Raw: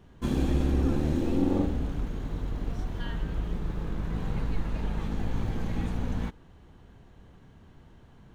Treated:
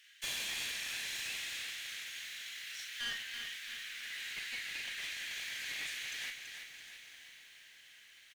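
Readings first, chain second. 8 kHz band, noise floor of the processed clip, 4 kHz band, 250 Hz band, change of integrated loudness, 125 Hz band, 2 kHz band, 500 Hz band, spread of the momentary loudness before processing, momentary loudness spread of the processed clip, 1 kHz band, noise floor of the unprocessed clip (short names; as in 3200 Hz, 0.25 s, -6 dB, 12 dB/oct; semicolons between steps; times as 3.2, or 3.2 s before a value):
n/a, -59 dBFS, +10.5 dB, -35.5 dB, -8.5 dB, under -35 dB, +7.5 dB, -26.5 dB, 9 LU, 16 LU, -15.0 dB, -54 dBFS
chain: steep high-pass 1800 Hz 48 dB/oct; doubler 41 ms -7 dB; one-sided clip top -49.5 dBFS; diffused feedback echo 0.989 s, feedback 46%, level -15 dB; lo-fi delay 0.332 s, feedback 55%, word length 12-bit, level -7 dB; gain +10 dB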